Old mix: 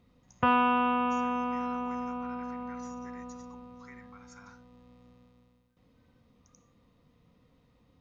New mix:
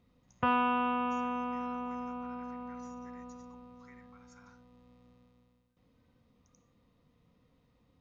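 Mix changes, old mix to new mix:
speech -7.0 dB; background -4.0 dB

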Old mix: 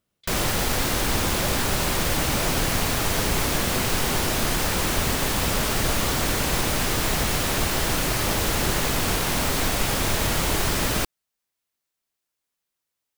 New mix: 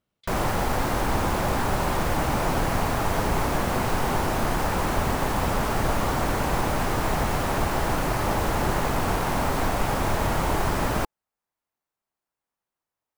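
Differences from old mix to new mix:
background: add EQ curve 480 Hz 0 dB, 850 Hz +5 dB, 3500 Hz -10 dB; reverb: off

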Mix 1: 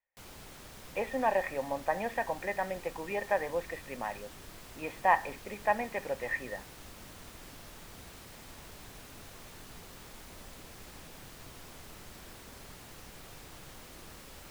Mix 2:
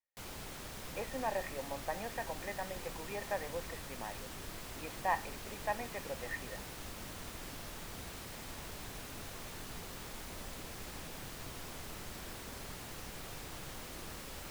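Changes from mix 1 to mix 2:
speech -8.0 dB; background +3.5 dB

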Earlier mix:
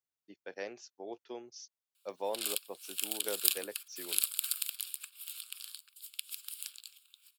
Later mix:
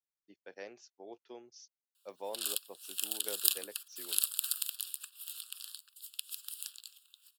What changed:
speech -5.5 dB; background: add Butterworth band-stop 2200 Hz, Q 2.8

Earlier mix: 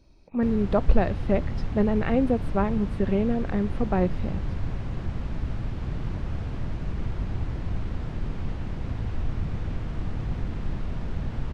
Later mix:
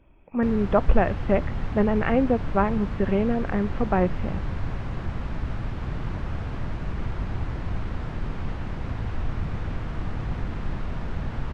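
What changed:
speech: add brick-wall FIR low-pass 3500 Hz; master: add bell 1300 Hz +6 dB 2.2 oct

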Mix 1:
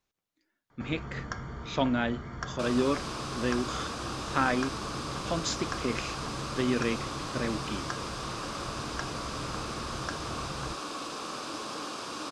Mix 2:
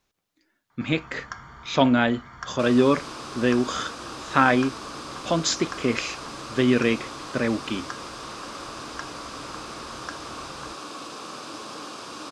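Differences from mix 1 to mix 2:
speech +8.5 dB; first sound: add resonant low shelf 690 Hz -8.5 dB, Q 1.5

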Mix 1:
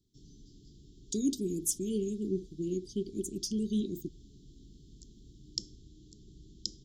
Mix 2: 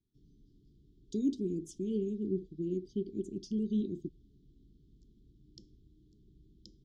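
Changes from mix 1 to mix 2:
background -7.0 dB; master: add tape spacing loss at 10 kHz 28 dB

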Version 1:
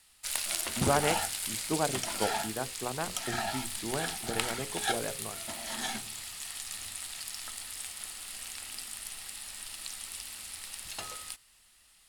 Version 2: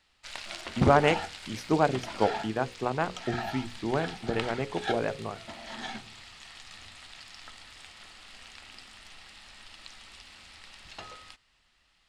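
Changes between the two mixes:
speech +6.5 dB; background: add air absorption 160 m

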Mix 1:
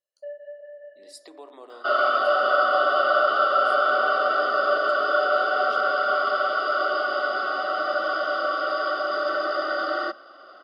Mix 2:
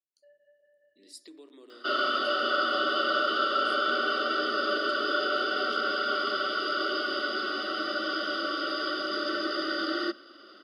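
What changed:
first sound -8.5 dB; second sound +6.0 dB; master: add EQ curve 350 Hz 0 dB, 750 Hz -23 dB, 1700 Hz -8 dB, 3200 Hz -2 dB

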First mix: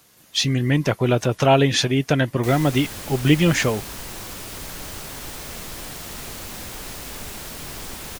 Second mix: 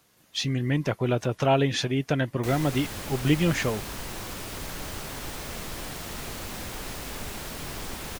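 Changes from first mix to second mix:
speech -6.0 dB; master: add high shelf 4100 Hz -5 dB

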